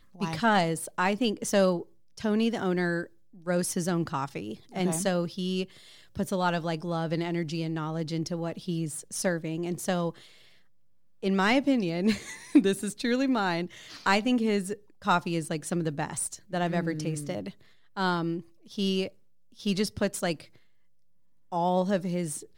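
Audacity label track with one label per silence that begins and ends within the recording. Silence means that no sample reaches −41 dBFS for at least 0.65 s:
10.180000	11.230000	silence
20.440000	21.520000	silence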